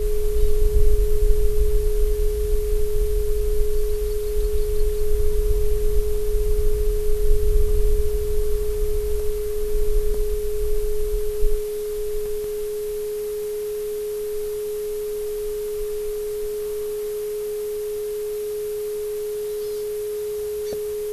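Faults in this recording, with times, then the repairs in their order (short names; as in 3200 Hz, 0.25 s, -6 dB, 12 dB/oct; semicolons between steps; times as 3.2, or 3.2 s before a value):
tone 420 Hz -24 dBFS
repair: notch 420 Hz, Q 30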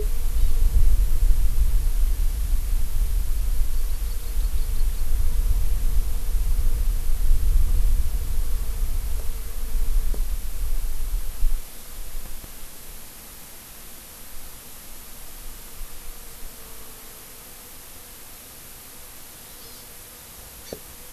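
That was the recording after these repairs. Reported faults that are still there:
none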